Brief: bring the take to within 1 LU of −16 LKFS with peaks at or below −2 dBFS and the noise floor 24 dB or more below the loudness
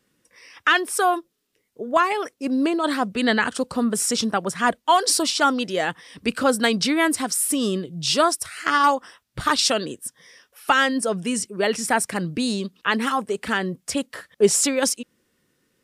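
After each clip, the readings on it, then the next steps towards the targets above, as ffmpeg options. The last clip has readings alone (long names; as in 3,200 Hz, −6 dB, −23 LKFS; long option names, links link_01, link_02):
integrated loudness −22.0 LKFS; sample peak −6.5 dBFS; target loudness −16.0 LKFS
→ -af "volume=6dB,alimiter=limit=-2dB:level=0:latency=1"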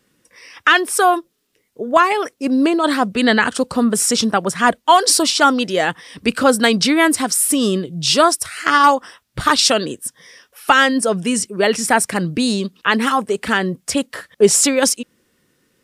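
integrated loudness −16.0 LKFS; sample peak −2.0 dBFS; background noise floor −65 dBFS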